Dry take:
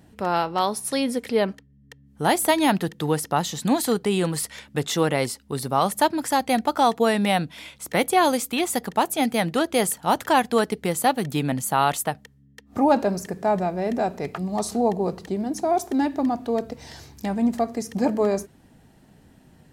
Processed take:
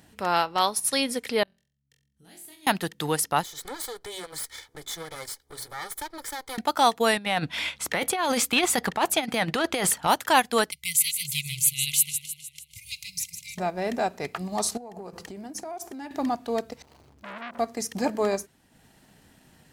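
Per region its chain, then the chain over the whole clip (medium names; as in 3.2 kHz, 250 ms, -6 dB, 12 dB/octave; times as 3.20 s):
1.43–2.67 s: amplifier tone stack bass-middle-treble 10-0-1 + compression 4:1, threshold -48 dBFS + flutter echo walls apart 3.9 m, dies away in 0.44 s
3.43–6.58 s: comb filter that takes the minimum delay 2.3 ms + Butterworth band-stop 2.7 kHz, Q 5 + compression 2:1, threshold -41 dBFS
7.17–10.07 s: bass shelf 200 Hz +12 dB + compressor with a negative ratio -21 dBFS, ratio -0.5 + overdrive pedal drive 11 dB, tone 2.5 kHz, clips at -7.5 dBFS
10.71–13.58 s: brick-wall FIR band-stop 160–2000 Hz + treble shelf 7.3 kHz +6 dB + modulated delay 154 ms, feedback 54%, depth 81 cents, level -9 dB
14.77–16.11 s: peaking EQ 3.8 kHz -6.5 dB 0.33 oct + de-hum 170 Hz, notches 10 + compression 12:1, threshold -31 dBFS
16.82–17.59 s: median filter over 25 samples + compression, threshold -27 dBFS + transformer saturation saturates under 1.4 kHz
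whole clip: tilt shelf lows -5.5 dB, about 880 Hz; transient shaper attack -2 dB, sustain -6 dB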